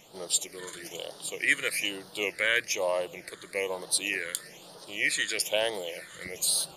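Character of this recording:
phaser sweep stages 8, 1.1 Hz, lowest notch 750–2,300 Hz

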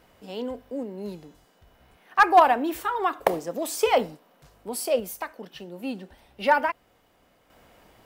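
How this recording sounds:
sample-and-hold tremolo 1.2 Hz

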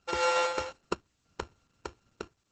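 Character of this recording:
a buzz of ramps at a fixed pitch in blocks of 32 samples
chopped level 0.8 Hz, depth 65%, duty 75%
a quantiser's noise floor 12 bits, dither triangular
Opus

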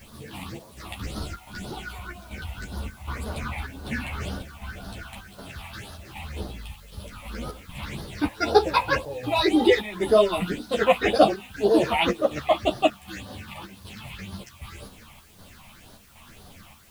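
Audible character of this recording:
phaser sweep stages 6, 1.9 Hz, lowest notch 390–2,300 Hz
chopped level 1.3 Hz, depth 60%, duty 75%
a quantiser's noise floor 10 bits, dither triangular
a shimmering, thickened sound

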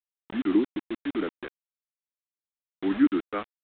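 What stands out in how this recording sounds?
a quantiser's noise floor 6 bits, dither none
mu-law

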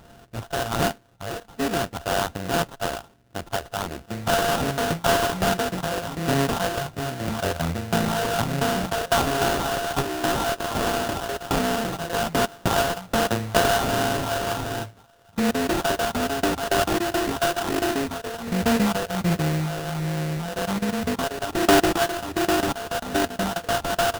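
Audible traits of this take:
a buzz of ramps at a fixed pitch in blocks of 64 samples
phaser sweep stages 4, 1.3 Hz, lowest notch 210–2,900 Hz
aliases and images of a low sample rate 2,200 Hz, jitter 20%

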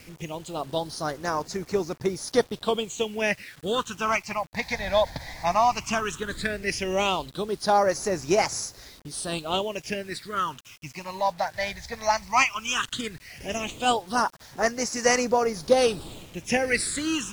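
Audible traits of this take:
phaser sweep stages 8, 0.15 Hz, lowest notch 370–3,100 Hz
a quantiser's noise floor 8 bits, dither none
AAC

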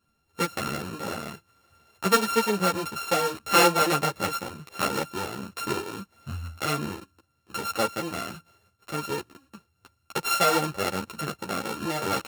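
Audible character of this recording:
a buzz of ramps at a fixed pitch in blocks of 32 samples
tremolo saw up 0.69 Hz, depth 30%
a shimmering, thickened sound

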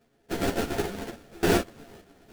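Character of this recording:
a buzz of ramps at a fixed pitch in blocks of 64 samples
sample-and-hold tremolo, depth 95%
aliases and images of a low sample rate 1,100 Hz, jitter 20%
a shimmering, thickened sound

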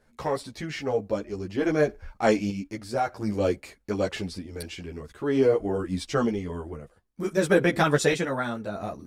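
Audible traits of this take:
sample-and-hold tremolo 1.6 Hz, depth 55%
a shimmering, thickened sound

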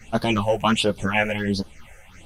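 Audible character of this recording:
phaser sweep stages 6, 1.4 Hz, lowest notch 260–2,400 Hz
tremolo triangle 3.3 Hz, depth 30%
a shimmering, thickened sound

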